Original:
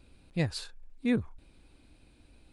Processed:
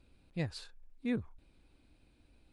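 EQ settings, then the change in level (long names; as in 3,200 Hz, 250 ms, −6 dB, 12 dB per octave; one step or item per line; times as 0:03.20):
high-shelf EQ 8,100 Hz −7 dB
−6.5 dB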